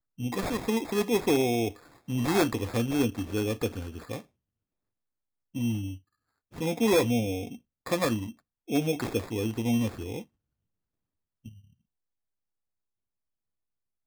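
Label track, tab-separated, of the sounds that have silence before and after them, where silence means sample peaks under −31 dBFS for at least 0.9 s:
5.560000	10.190000	sound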